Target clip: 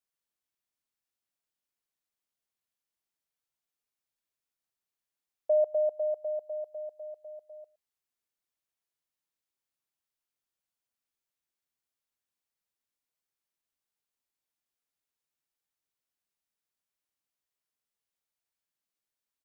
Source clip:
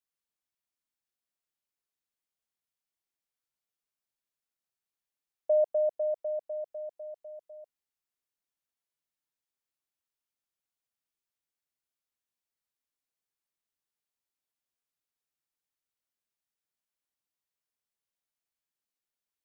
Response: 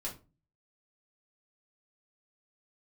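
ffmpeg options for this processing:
-af "aecho=1:1:115:0.075"

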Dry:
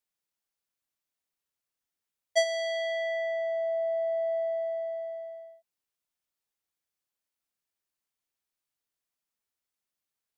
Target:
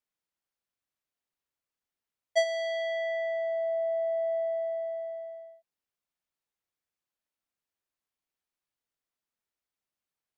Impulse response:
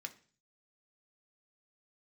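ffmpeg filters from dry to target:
-af "highshelf=f=4.3k:g=-8"

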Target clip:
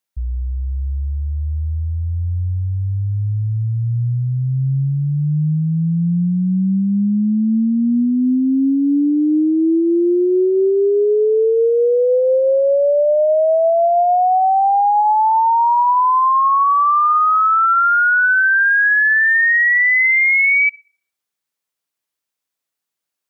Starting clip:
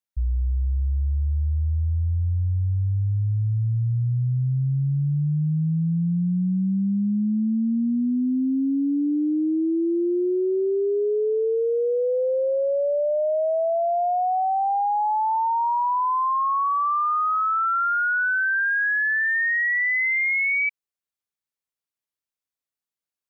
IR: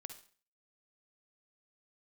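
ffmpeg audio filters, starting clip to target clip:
-filter_complex "[0:a]lowshelf=f=110:g=-10.5,asplit=2[a][b];[1:a]atrim=start_sample=2205[c];[b][c]afir=irnorm=-1:irlink=0,volume=-10dB[d];[a][d]amix=inputs=2:normalize=0,volume=7.5dB"

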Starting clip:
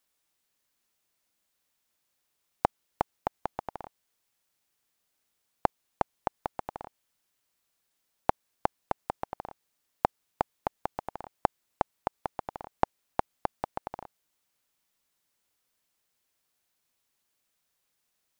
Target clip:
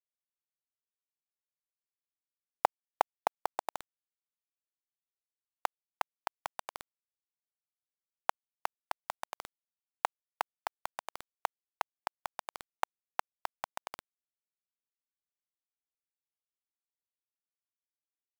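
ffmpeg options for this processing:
-af "asetnsamples=n=441:p=0,asendcmd='3.77 highpass f 1300',highpass=610,acrusher=bits=5:mix=0:aa=0.000001,volume=2.5dB"

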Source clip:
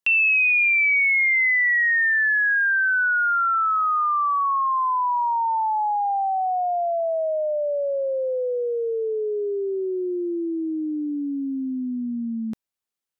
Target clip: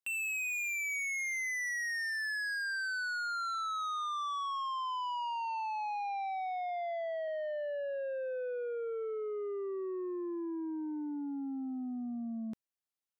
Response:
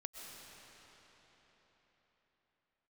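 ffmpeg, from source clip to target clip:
-filter_complex "[0:a]asettb=1/sr,asplit=3[a][b][c];[a]atrim=end=6.694[d];[b]atrim=start=6.69:end=7.28,asetpts=PTS-STARTPTS,afade=t=in:d=0.004:c=qsin,afade=t=out:st=0.586:d=0.004:c=qsin,highpass=f=96:w=0.5412,highpass=f=96:w=1.3066[e];[c]atrim=start=7.276[f];[d][e]acrossfade=d=0.004:c1=hsin:c2=qsin[g];[g][f]acrossfade=d=0.004:c1=qsin:c2=hsin,asoftclip=type=tanh:threshold=-26dB,volume=-8.5dB"

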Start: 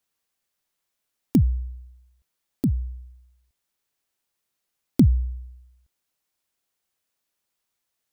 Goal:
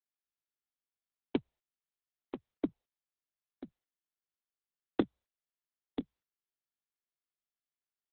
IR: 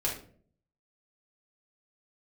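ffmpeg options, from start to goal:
-filter_complex "[0:a]highpass=f=370:w=0.5412,highpass=f=370:w=1.3066,asettb=1/sr,asplit=3[a][b][c];[a]atrim=end=2.664[d];[b]atrim=start=2.66:end=5.08,asetpts=PTS-STARTPTS,afade=t=in:d=0.004:c=qsin,afade=t=out:st=2.416:d=0.004:c=qsin,asplit=2[e][f];[f]adelay=25,volume=-13.5dB[g];[e][g]amix=inputs=2:normalize=0,atrim=end_sample=106722[h];[c]atrim=start=5.076[i];[d][h]acrossfade=d=0.004:c1=hsin:c2=qsin[j];[j][i]acrossfade=d=0.004:c1=qsin:c2=hsin,agate=range=-49dB:threshold=-57dB:ratio=16:detection=peak,asplit=2[k][l];[l]acompressor=threshold=-36dB:ratio=8,volume=-1dB[m];[k][m]amix=inputs=2:normalize=0,afftdn=nr=30:nf=-59,asplit=2[n][o];[o]aecho=0:1:988:0.316[p];[n][p]amix=inputs=2:normalize=0,volume=-1.5dB" -ar 48000 -c:a libopus -b:a 8k

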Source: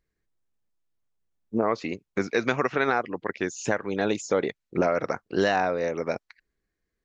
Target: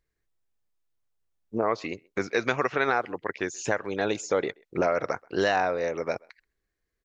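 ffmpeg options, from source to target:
-filter_complex "[0:a]equalizer=f=210:w=1.2:g=-6,asplit=2[a][b];[b]adelay=130,highpass=300,lowpass=3.4k,asoftclip=type=hard:threshold=-15.5dB,volume=-27dB[c];[a][c]amix=inputs=2:normalize=0"

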